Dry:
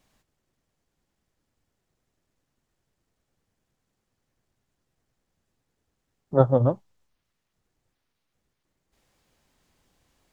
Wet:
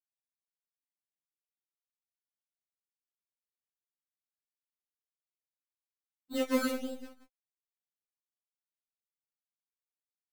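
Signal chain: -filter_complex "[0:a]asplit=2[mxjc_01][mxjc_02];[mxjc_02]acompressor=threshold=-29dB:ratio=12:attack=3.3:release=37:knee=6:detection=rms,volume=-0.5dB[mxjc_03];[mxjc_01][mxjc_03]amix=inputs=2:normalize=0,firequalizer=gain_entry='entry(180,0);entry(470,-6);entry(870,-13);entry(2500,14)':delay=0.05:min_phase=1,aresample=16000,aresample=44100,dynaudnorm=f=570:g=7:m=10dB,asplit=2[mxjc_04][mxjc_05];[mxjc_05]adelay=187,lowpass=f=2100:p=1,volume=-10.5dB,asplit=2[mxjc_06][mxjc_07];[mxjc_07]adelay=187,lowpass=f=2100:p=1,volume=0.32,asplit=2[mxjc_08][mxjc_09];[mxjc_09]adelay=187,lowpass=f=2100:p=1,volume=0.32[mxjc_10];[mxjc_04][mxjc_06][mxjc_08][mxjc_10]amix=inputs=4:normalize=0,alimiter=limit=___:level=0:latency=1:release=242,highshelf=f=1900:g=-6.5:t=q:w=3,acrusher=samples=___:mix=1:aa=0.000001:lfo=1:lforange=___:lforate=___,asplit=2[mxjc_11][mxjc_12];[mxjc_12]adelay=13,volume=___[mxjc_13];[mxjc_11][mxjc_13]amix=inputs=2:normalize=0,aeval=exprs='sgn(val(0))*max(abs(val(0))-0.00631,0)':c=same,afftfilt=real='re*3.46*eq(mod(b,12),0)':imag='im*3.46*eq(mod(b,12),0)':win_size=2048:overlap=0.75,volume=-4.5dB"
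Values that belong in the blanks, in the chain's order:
-12.5dB, 21, 21, 1.7, -13.5dB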